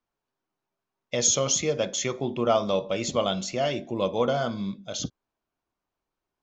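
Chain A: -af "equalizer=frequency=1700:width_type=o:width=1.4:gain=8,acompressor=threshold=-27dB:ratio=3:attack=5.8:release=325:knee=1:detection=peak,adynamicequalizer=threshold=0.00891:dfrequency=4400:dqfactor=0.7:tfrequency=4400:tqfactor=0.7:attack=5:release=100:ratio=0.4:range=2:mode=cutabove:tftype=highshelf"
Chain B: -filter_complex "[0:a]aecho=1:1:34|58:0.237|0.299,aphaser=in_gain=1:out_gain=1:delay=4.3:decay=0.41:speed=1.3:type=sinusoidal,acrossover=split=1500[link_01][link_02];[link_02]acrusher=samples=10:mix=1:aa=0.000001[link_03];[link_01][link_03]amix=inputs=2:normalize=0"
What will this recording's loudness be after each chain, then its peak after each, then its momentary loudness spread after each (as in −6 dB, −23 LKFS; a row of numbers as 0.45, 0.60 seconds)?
−31.5, −25.0 LKFS; −11.5, −9.0 dBFS; 5, 10 LU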